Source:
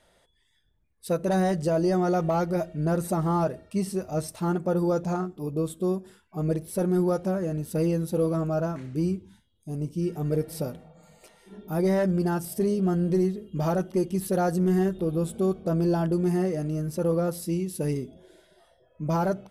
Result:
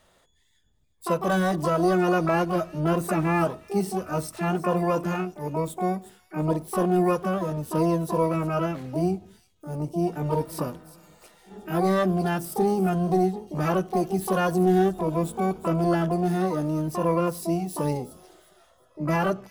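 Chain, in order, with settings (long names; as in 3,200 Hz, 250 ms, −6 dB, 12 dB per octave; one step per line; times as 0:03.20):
pitch-shifted copies added +12 semitones −4 dB
delay with a high-pass on its return 360 ms, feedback 30%, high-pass 3,700 Hz, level −13 dB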